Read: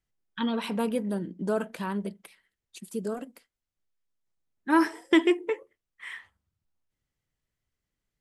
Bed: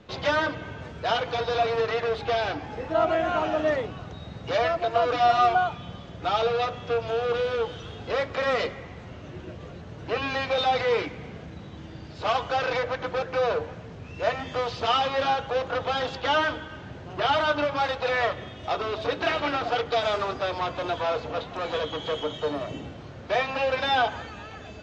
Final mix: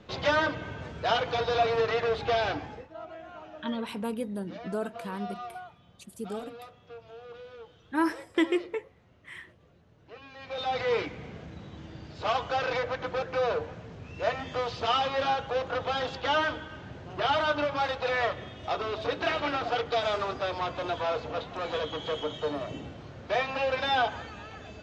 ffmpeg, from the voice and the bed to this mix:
ffmpeg -i stem1.wav -i stem2.wav -filter_complex "[0:a]adelay=3250,volume=-4.5dB[link_01];[1:a]volume=16dB,afade=type=out:start_time=2.57:duration=0.31:silence=0.112202,afade=type=in:start_time=10.37:duration=0.57:silence=0.141254[link_02];[link_01][link_02]amix=inputs=2:normalize=0" out.wav

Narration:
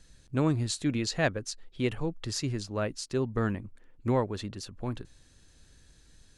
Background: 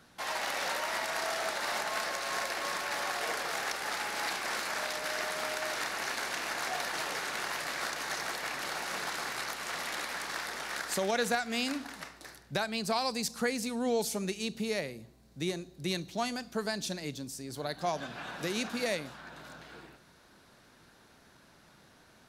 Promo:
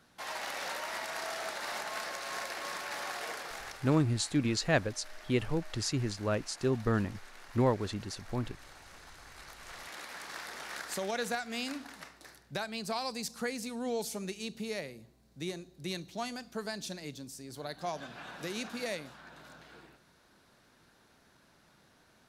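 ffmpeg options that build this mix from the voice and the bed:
ffmpeg -i stem1.wav -i stem2.wav -filter_complex "[0:a]adelay=3500,volume=-0.5dB[link_01];[1:a]volume=9dB,afade=type=out:start_time=3.15:duration=0.9:silence=0.211349,afade=type=in:start_time=9.23:duration=1.42:silence=0.211349[link_02];[link_01][link_02]amix=inputs=2:normalize=0" out.wav

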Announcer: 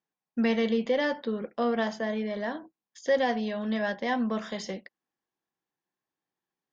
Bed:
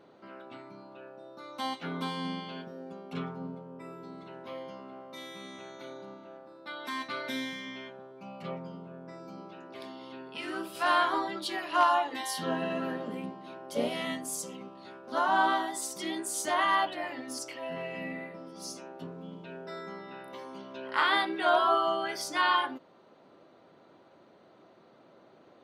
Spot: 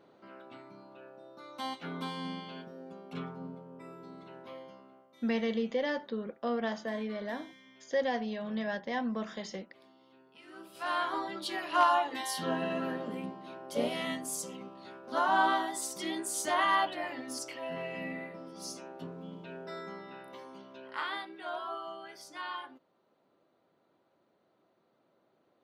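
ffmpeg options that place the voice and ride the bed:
ffmpeg -i stem1.wav -i stem2.wav -filter_complex "[0:a]adelay=4850,volume=-5.5dB[link_01];[1:a]volume=12.5dB,afade=type=out:start_time=4.37:duration=0.72:silence=0.211349,afade=type=in:start_time=10.45:duration=1.21:silence=0.158489,afade=type=out:start_time=19.79:duration=1.49:silence=0.223872[link_02];[link_01][link_02]amix=inputs=2:normalize=0" out.wav

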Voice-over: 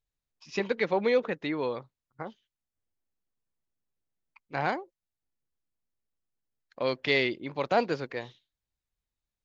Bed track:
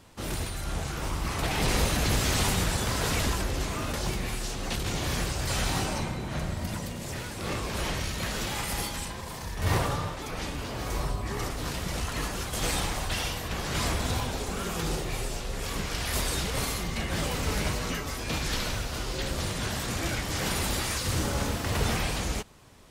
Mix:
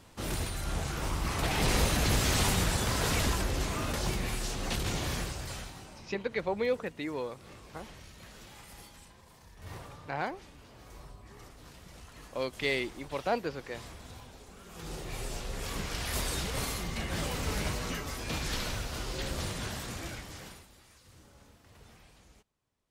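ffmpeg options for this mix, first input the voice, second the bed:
ffmpeg -i stem1.wav -i stem2.wav -filter_complex "[0:a]adelay=5550,volume=-5dB[link_01];[1:a]volume=13.5dB,afade=type=out:start_time=4.85:duration=0.88:silence=0.133352,afade=type=in:start_time=14.67:duration=0.69:silence=0.177828,afade=type=out:start_time=19.42:duration=1.24:silence=0.0562341[link_02];[link_01][link_02]amix=inputs=2:normalize=0" out.wav

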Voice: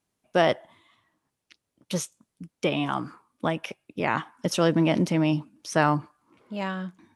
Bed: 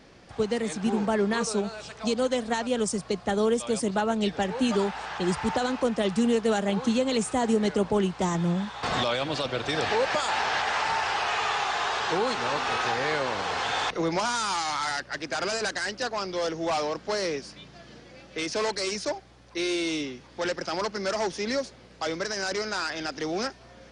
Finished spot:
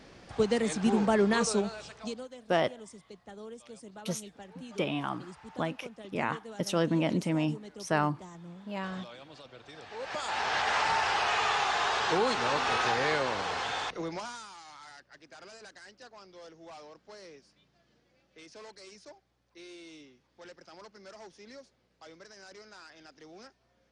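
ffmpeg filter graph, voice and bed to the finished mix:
ffmpeg -i stem1.wav -i stem2.wav -filter_complex "[0:a]adelay=2150,volume=-6dB[link_01];[1:a]volume=20dB,afade=type=out:start_time=1.48:duration=0.79:silence=0.0891251,afade=type=in:start_time=9.91:duration=0.82:silence=0.1,afade=type=out:start_time=13.06:duration=1.45:silence=0.1[link_02];[link_01][link_02]amix=inputs=2:normalize=0" out.wav

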